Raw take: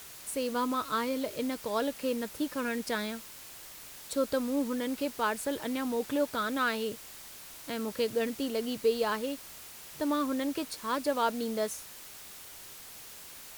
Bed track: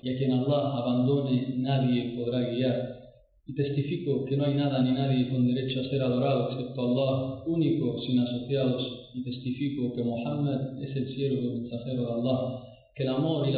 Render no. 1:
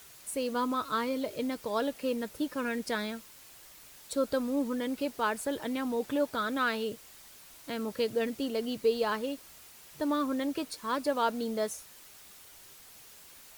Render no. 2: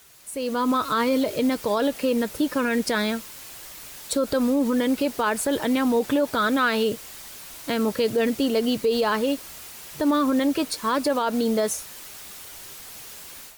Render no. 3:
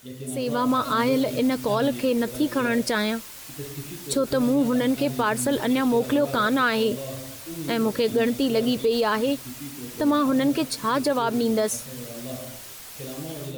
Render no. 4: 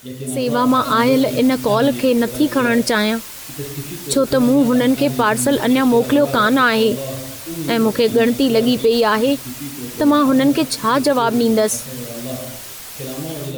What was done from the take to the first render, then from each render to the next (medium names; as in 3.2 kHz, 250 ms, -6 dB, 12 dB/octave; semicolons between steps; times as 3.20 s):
noise reduction 6 dB, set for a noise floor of -48 dBFS
peak limiter -26 dBFS, peak gain reduction 10.5 dB; level rider gain up to 12 dB
add bed track -8.5 dB
trim +7.5 dB